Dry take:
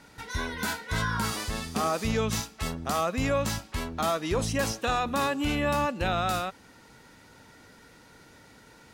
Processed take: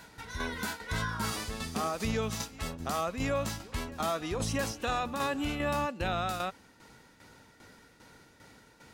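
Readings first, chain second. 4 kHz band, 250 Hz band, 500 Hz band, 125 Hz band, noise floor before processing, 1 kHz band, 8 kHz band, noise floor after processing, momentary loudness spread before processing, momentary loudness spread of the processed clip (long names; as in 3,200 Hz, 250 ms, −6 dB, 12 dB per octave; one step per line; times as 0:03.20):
−4.5 dB, −4.5 dB, −4.5 dB, −4.5 dB, −55 dBFS, −4.5 dB, −4.5 dB, −60 dBFS, 7 LU, 6 LU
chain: shaped tremolo saw down 2.5 Hz, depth 65%
brickwall limiter −22.5 dBFS, peak gain reduction 4.5 dB
backwards echo 672 ms −19 dB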